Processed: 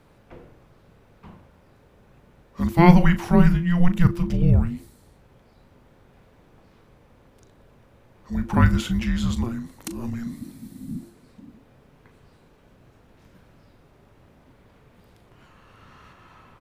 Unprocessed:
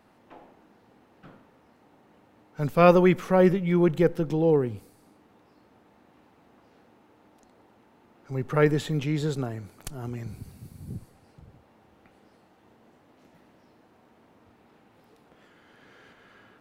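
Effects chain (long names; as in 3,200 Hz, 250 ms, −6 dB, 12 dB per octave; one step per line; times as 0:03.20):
frequency shifter −350 Hz
double-tracking delay 38 ms −12 dB
level +4.5 dB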